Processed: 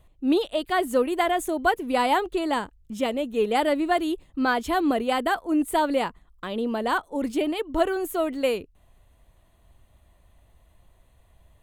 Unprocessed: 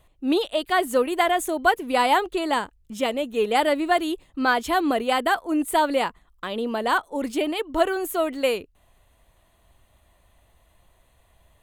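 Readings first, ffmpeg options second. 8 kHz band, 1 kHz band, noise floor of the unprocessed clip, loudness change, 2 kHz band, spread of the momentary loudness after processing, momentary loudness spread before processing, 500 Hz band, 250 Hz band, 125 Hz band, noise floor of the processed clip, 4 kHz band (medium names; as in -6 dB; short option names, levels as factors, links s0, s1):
-4.0 dB, -2.5 dB, -62 dBFS, -1.5 dB, -3.5 dB, 6 LU, 7 LU, -1.5 dB, +1.0 dB, no reading, -60 dBFS, -4.0 dB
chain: -af "lowshelf=f=390:g=7.5,volume=0.631"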